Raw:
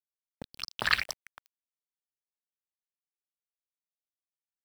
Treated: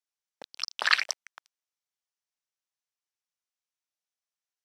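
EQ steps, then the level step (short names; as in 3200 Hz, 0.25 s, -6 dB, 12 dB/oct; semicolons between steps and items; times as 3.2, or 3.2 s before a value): HPF 600 Hz 12 dB/oct; LPF 8400 Hz 12 dB/oct; bell 5800 Hz +5.5 dB 0.36 oct; +3.0 dB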